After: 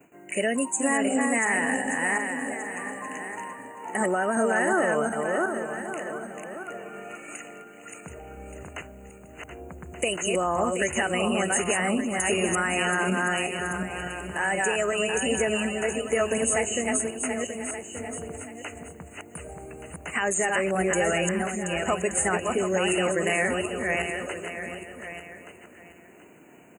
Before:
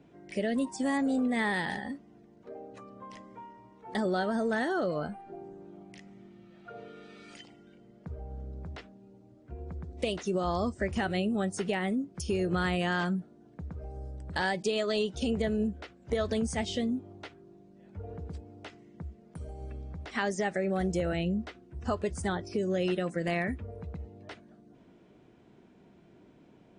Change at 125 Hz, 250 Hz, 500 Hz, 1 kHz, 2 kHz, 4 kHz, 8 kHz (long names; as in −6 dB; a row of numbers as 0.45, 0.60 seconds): −0.5, +2.5, +6.5, +8.0, +10.5, +6.0, +18.5 decibels